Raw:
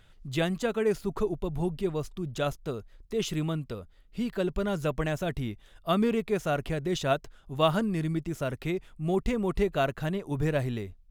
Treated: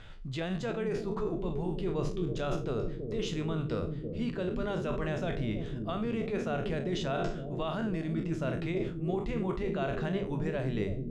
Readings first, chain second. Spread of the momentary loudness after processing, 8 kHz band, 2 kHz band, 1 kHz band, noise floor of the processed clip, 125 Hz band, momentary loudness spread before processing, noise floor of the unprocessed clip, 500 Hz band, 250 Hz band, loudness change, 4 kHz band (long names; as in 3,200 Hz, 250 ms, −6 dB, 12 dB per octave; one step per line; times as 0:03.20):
3 LU, −8.0 dB, −4.5 dB, −5.5 dB, −39 dBFS, −2.0 dB, 9 LU, −57 dBFS, −4.0 dB, −2.5 dB, −3.5 dB, −5.5 dB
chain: peak hold with a decay on every bin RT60 0.35 s
mains-hum notches 50/100/150/200/250/300/350/400/450 Hz
brickwall limiter −21 dBFS, peak gain reduction 11 dB
reversed playback
downward compressor 12 to 1, threshold −39 dBFS, peak gain reduction 14.5 dB
reversed playback
high-frequency loss of the air 100 metres
on a send: bucket-brigade delay 326 ms, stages 1,024, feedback 68%, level −5 dB
on the sum: level +9 dB